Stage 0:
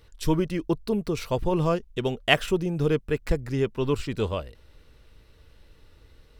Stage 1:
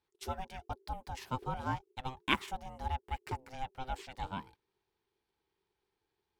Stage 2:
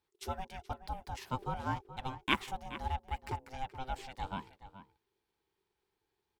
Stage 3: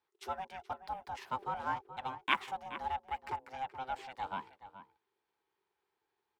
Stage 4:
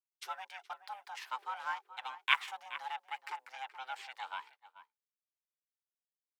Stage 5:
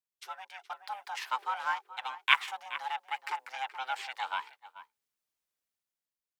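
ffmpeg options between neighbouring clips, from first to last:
-af "agate=range=0.224:threshold=0.00708:ratio=16:detection=peak,lowshelf=f=340:t=q:w=1.5:g=-11.5,aeval=exprs='val(0)*sin(2*PI*390*n/s)':c=same,volume=0.376"
-filter_complex "[0:a]asplit=2[s0][s1];[s1]adelay=425.7,volume=0.224,highshelf=f=4000:g=-9.58[s2];[s0][s2]amix=inputs=2:normalize=0"
-filter_complex "[0:a]highpass=f=96:p=1,equalizer=f=1100:w=0.34:g=12,acrossover=split=610|1100[s0][s1][s2];[s0]asoftclip=type=hard:threshold=0.0188[s3];[s3][s1][s2]amix=inputs=3:normalize=0,volume=0.355"
-af "highpass=1400,agate=range=0.0224:threshold=0.00158:ratio=3:detection=peak,volume=1.68"
-af "dynaudnorm=f=120:g=13:m=2.82,volume=0.841"

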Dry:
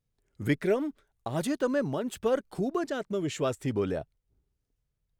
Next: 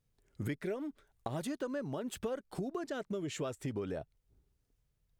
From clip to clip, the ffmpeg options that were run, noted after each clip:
-af "acompressor=threshold=0.0126:ratio=6,volume=1.33"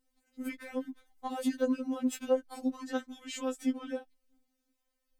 -af "afftfilt=real='re*3.46*eq(mod(b,12),0)':imag='im*3.46*eq(mod(b,12),0)':win_size=2048:overlap=0.75,volume=1.88"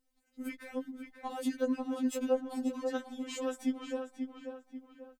-filter_complex "[0:a]asplit=2[s0][s1];[s1]adelay=538,lowpass=f=3200:p=1,volume=0.501,asplit=2[s2][s3];[s3]adelay=538,lowpass=f=3200:p=1,volume=0.42,asplit=2[s4][s5];[s5]adelay=538,lowpass=f=3200:p=1,volume=0.42,asplit=2[s6][s7];[s7]adelay=538,lowpass=f=3200:p=1,volume=0.42,asplit=2[s8][s9];[s9]adelay=538,lowpass=f=3200:p=1,volume=0.42[s10];[s0][s2][s4][s6][s8][s10]amix=inputs=6:normalize=0,volume=0.794"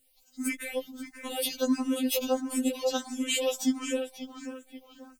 -filter_complex "[0:a]aexciter=amount=2.1:drive=8.3:freq=2300,asplit=2[s0][s1];[s1]afreqshift=1.5[s2];[s0][s2]amix=inputs=2:normalize=1,volume=2.51"

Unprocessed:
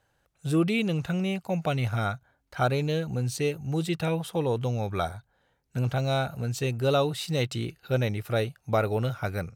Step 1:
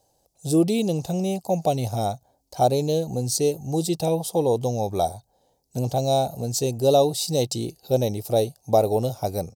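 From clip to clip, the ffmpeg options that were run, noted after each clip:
-af "firequalizer=gain_entry='entry(130,0);entry(260,5);entry(770,9);entry(1400,-18);entry(4800,12)':delay=0.05:min_phase=1"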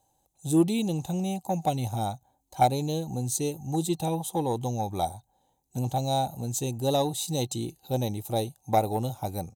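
-af "superequalizer=7b=0.447:8b=0.501:9b=1.41:14b=0.282,aeval=exprs='0.422*(cos(1*acos(clip(val(0)/0.422,-1,1)))-cos(1*PI/2))+0.0473*(cos(3*acos(clip(val(0)/0.422,-1,1)))-cos(3*PI/2))':c=same"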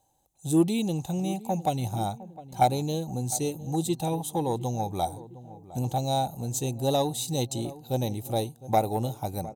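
-filter_complex "[0:a]asplit=2[s0][s1];[s1]adelay=708,lowpass=f=1000:p=1,volume=0.158,asplit=2[s2][s3];[s3]adelay=708,lowpass=f=1000:p=1,volume=0.53,asplit=2[s4][s5];[s5]adelay=708,lowpass=f=1000:p=1,volume=0.53,asplit=2[s6][s7];[s7]adelay=708,lowpass=f=1000:p=1,volume=0.53,asplit=2[s8][s9];[s9]adelay=708,lowpass=f=1000:p=1,volume=0.53[s10];[s0][s2][s4][s6][s8][s10]amix=inputs=6:normalize=0"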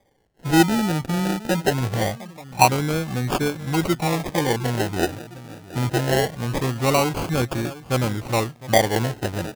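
-af "acrusher=samples=32:mix=1:aa=0.000001:lfo=1:lforange=19.2:lforate=0.23,volume=2"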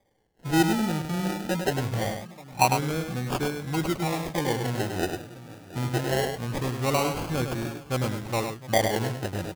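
-af "aecho=1:1:102:0.473,volume=0.501"

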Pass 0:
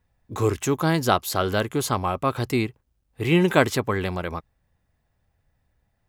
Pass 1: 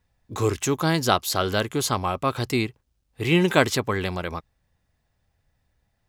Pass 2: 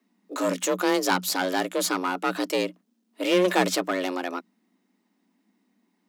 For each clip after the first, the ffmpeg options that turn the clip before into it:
-af "equalizer=f=4900:w=0.65:g=5.5,volume=0.891"
-af "aeval=exprs='clip(val(0),-1,0.0794)':c=same,afreqshift=180"

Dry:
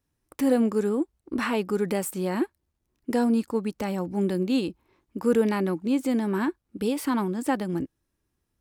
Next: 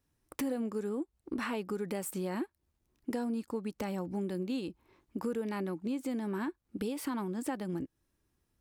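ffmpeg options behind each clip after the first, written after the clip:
-af "acompressor=threshold=0.02:ratio=4"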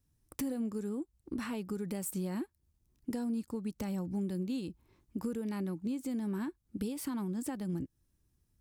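-af "bass=f=250:g=12,treble=f=4000:g=8,volume=0.473"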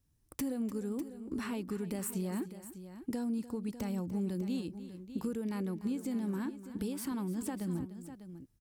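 -af "aecho=1:1:297|599:0.178|0.237"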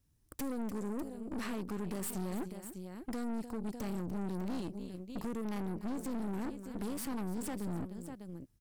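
-af "aeval=exprs='(tanh(112*val(0)+0.75)-tanh(0.75))/112':c=same,volume=1.88"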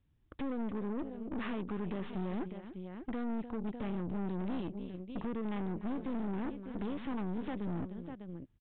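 -af "aresample=8000,aresample=44100,volume=1.12"

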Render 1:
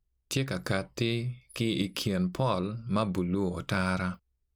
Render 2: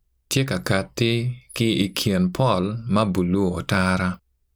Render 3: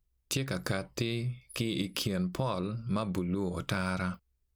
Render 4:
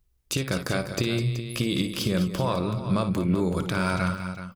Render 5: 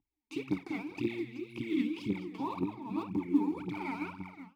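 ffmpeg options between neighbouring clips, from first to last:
-af "highshelf=f=9800:g=4,volume=2.66"
-af "acompressor=threshold=0.1:ratio=6,volume=0.422"
-filter_complex "[0:a]alimiter=limit=0.0944:level=0:latency=1:release=131,asplit=2[s0][s1];[s1]aecho=0:1:57|205|377:0.282|0.282|0.266[s2];[s0][s2]amix=inputs=2:normalize=0,volume=2.24"
-filter_complex "[0:a]asplit=3[s0][s1][s2];[s0]bandpass=f=300:t=q:w=8,volume=1[s3];[s1]bandpass=f=870:t=q:w=8,volume=0.501[s4];[s2]bandpass=f=2240:t=q:w=8,volume=0.355[s5];[s3][s4][s5]amix=inputs=3:normalize=0,aphaser=in_gain=1:out_gain=1:delay=4.7:decay=0.79:speed=1.9:type=triangular"

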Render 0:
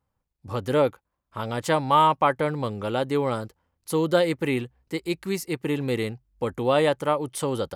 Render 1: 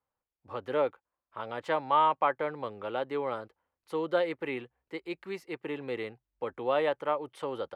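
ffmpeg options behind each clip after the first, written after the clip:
-filter_complex "[0:a]acrossover=split=340 3400:gain=0.2 1 0.0891[s0][s1][s2];[s0][s1][s2]amix=inputs=3:normalize=0,volume=0.531"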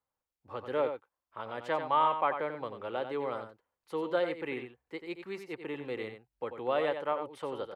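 -af "aecho=1:1:91:0.376,volume=0.75"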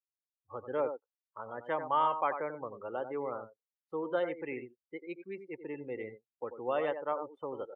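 -af "afftdn=nr=34:nf=-41,volume=0.794"

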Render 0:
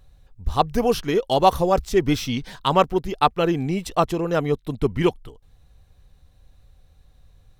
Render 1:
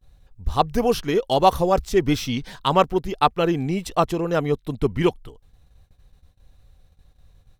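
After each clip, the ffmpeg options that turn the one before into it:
-af "agate=range=0.0708:threshold=0.00251:ratio=16:detection=peak"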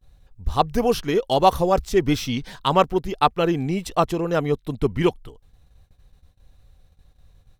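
-af anull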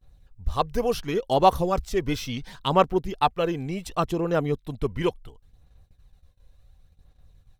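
-af "aphaser=in_gain=1:out_gain=1:delay=2:decay=0.34:speed=0.7:type=sinusoidal,volume=0.562"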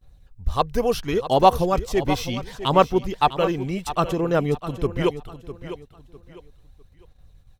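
-af "aecho=1:1:653|1306|1959:0.237|0.0688|0.0199,volume=1.41"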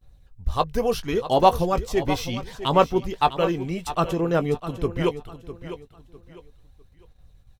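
-filter_complex "[0:a]asplit=2[s0][s1];[s1]adelay=18,volume=0.237[s2];[s0][s2]amix=inputs=2:normalize=0,volume=0.841"

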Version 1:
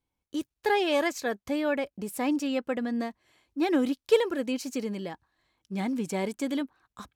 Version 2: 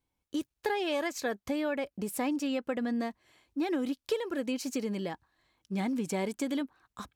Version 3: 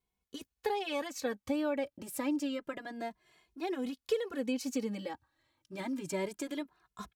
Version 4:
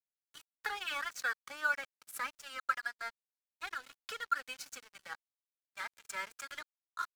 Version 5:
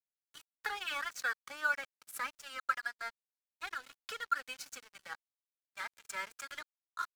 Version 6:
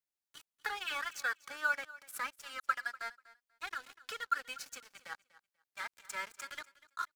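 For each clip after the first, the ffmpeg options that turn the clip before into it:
-af "acompressor=threshold=0.0355:ratio=6,volume=1.12"
-filter_complex "[0:a]asplit=2[s0][s1];[s1]adelay=2.4,afreqshift=0.28[s2];[s0][s2]amix=inputs=2:normalize=1"
-af "highpass=f=1400:t=q:w=9.1,aeval=exprs='sgn(val(0))*max(abs(val(0))-0.00473,0)':c=same,volume=1.12"
-af anull
-af "aecho=1:1:244|488:0.112|0.0202"

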